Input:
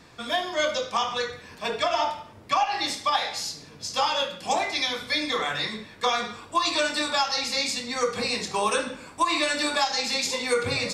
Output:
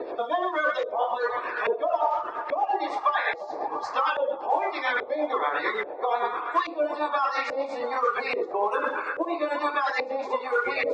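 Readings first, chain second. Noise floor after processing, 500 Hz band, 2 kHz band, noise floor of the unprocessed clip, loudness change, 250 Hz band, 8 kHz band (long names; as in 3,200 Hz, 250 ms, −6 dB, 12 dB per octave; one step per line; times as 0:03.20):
−37 dBFS, +2.0 dB, 0.0 dB, −48 dBFS, −1.0 dB, −3.0 dB, below −25 dB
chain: spectral magnitudes quantised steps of 30 dB
pitch vibrato 7 Hz 16 cents
low shelf with overshoot 250 Hz −11.5 dB, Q 3
reversed playback
downward compressor, threshold −31 dBFS, peak gain reduction 14.5 dB
reversed playback
amplitude tremolo 8.8 Hz, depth 52%
spectral tilt +2.5 dB per octave
on a send: feedback echo with a band-pass in the loop 343 ms, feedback 76%, band-pass 940 Hz, level −14 dB
on the sum: auto-filter low-pass saw up 1.2 Hz 510–1,800 Hz
multiband upward and downward compressor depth 70%
level +8.5 dB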